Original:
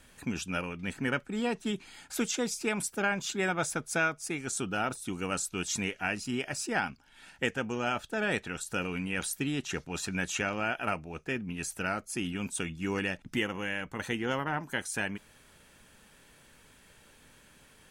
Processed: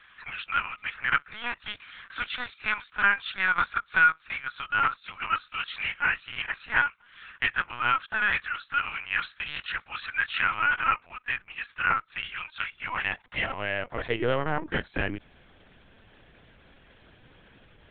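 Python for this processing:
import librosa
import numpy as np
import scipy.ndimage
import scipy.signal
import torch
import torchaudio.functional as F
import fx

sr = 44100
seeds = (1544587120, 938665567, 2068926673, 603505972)

y = fx.filter_sweep_highpass(x, sr, from_hz=1300.0, to_hz=280.0, start_s=12.7, end_s=14.72, q=2.2)
y = fx.lpc_vocoder(y, sr, seeds[0], excitation='pitch_kept', order=10)
y = F.gain(torch.from_numpy(y), 3.5).numpy()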